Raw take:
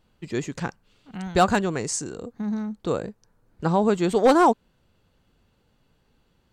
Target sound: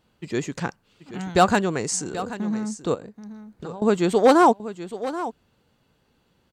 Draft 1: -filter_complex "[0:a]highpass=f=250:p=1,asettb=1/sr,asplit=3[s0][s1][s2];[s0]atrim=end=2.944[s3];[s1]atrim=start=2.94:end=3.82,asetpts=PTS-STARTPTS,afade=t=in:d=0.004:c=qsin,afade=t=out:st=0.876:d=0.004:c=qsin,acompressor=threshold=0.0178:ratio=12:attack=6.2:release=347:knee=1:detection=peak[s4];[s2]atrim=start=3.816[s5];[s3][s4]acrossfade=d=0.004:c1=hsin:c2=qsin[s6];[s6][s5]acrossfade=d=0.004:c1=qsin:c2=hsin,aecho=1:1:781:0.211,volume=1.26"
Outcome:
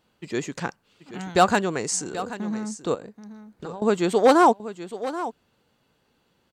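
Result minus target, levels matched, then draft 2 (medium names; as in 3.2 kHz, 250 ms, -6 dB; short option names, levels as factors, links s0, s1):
125 Hz band -3.0 dB
-filter_complex "[0:a]highpass=f=98:p=1,asettb=1/sr,asplit=3[s0][s1][s2];[s0]atrim=end=2.944[s3];[s1]atrim=start=2.94:end=3.82,asetpts=PTS-STARTPTS,afade=t=in:d=0.004:c=qsin,afade=t=out:st=0.876:d=0.004:c=qsin,acompressor=threshold=0.0178:ratio=12:attack=6.2:release=347:knee=1:detection=peak[s4];[s2]atrim=start=3.816[s5];[s3][s4]acrossfade=d=0.004:c1=hsin:c2=qsin[s6];[s6][s5]acrossfade=d=0.004:c1=qsin:c2=hsin,aecho=1:1:781:0.211,volume=1.26"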